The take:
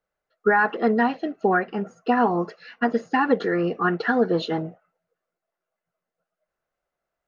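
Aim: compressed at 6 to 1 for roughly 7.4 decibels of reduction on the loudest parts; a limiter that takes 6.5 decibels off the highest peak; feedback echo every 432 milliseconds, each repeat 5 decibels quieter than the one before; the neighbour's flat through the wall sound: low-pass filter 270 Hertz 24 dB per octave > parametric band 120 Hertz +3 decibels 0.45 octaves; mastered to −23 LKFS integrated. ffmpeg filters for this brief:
ffmpeg -i in.wav -af "acompressor=threshold=-23dB:ratio=6,alimiter=limit=-19.5dB:level=0:latency=1,lowpass=frequency=270:width=0.5412,lowpass=frequency=270:width=1.3066,equalizer=frequency=120:width_type=o:width=0.45:gain=3,aecho=1:1:432|864|1296|1728|2160|2592|3024:0.562|0.315|0.176|0.0988|0.0553|0.031|0.0173,volume=12.5dB" out.wav

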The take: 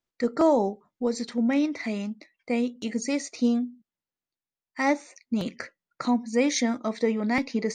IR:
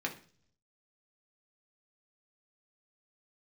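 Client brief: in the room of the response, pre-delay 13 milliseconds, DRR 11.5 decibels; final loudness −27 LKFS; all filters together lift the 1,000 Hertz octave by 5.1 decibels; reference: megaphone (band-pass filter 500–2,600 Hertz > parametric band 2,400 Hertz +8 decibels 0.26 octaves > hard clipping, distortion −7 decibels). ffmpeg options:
-filter_complex "[0:a]equalizer=frequency=1000:width_type=o:gain=7,asplit=2[link_01][link_02];[1:a]atrim=start_sample=2205,adelay=13[link_03];[link_02][link_03]afir=irnorm=-1:irlink=0,volume=-15.5dB[link_04];[link_01][link_04]amix=inputs=2:normalize=0,highpass=500,lowpass=2600,equalizer=frequency=2400:width_type=o:width=0.26:gain=8,asoftclip=type=hard:threshold=-23dB,volume=4.5dB"

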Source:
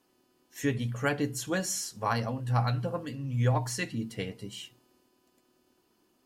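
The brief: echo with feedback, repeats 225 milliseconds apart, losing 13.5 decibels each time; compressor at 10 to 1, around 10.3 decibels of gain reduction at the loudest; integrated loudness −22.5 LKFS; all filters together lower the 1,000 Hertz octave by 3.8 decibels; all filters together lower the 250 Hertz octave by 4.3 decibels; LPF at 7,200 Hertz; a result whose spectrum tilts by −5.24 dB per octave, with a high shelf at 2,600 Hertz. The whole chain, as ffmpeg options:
ffmpeg -i in.wav -af "lowpass=7200,equalizer=frequency=250:width_type=o:gain=-5.5,equalizer=frequency=1000:width_type=o:gain=-3.5,highshelf=frequency=2600:gain=-7,acompressor=threshold=-34dB:ratio=10,aecho=1:1:225|450:0.211|0.0444,volume=17.5dB" out.wav

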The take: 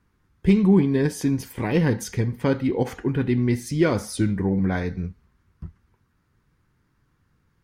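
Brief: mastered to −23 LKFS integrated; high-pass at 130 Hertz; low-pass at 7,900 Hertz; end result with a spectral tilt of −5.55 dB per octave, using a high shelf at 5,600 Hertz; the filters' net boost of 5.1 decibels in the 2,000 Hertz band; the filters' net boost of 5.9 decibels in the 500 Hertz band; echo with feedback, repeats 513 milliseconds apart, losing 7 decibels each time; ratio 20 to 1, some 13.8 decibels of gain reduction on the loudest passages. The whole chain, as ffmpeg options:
ffmpeg -i in.wav -af "highpass=130,lowpass=7900,equalizer=frequency=500:width_type=o:gain=7.5,equalizer=frequency=2000:width_type=o:gain=6.5,highshelf=frequency=5600:gain=-5,acompressor=threshold=-24dB:ratio=20,aecho=1:1:513|1026|1539|2052|2565:0.447|0.201|0.0905|0.0407|0.0183,volume=6.5dB" out.wav

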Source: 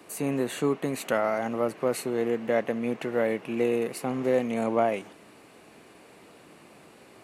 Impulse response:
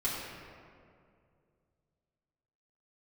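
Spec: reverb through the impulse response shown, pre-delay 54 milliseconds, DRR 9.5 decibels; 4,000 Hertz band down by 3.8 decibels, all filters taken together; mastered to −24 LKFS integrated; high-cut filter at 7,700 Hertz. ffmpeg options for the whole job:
-filter_complex "[0:a]lowpass=7700,equalizer=frequency=4000:width_type=o:gain=-5,asplit=2[link_01][link_02];[1:a]atrim=start_sample=2205,adelay=54[link_03];[link_02][link_03]afir=irnorm=-1:irlink=0,volume=-16dB[link_04];[link_01][link_04]amix=inputs=2:normalize=0,volume=3.5dB"

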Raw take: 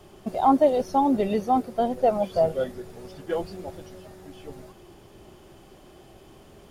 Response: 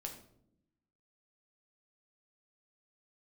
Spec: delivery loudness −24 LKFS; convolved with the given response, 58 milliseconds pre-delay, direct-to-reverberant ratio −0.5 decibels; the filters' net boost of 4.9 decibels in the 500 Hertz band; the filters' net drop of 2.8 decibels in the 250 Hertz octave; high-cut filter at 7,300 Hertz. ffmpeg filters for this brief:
-filter_complex "[0:a]lowpass=7300,equalizer=frequency=250:width_type=o:gain=-5,equalizer=frequency=500:width_type=o:gain=7,asplit=2[link_01][link_02];[1:a]atrim=start_sample=2205,adelay=58[link_03];[link_02][link_03]afir=irnorm=-1:irlink=0,volume=3dB[link_04];[link_01][link_04]amix=inputs=2:normalize=0,volume=-7dB"

